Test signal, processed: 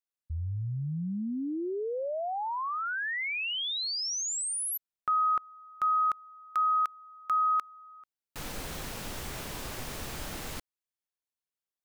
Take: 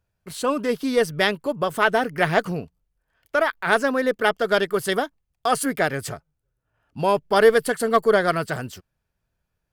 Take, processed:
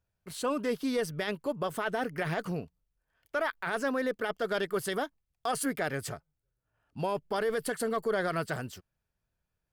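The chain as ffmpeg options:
ffmpeg -i in.wav -af "alimiter=limit=-15dB:level=0:latency=1:release=26,volume=-6.5dB" out.wav

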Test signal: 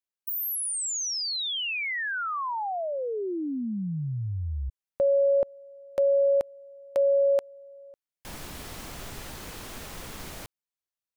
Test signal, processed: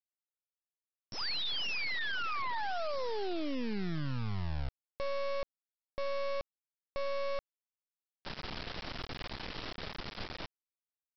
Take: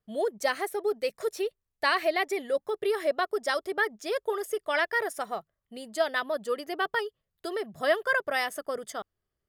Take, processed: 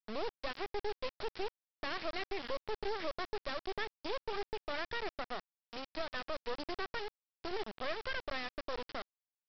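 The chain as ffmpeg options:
ffmpeg -i in.wav -af "acompressor=threshold=-30dB:ratio=5:attack=0.12:release=270:knee=1:detection=peak,aresample=11025,acrusher=bits=4:dc=4:mix=0:aa=0.000001,aresample=44100,volume=1dB" out.wav

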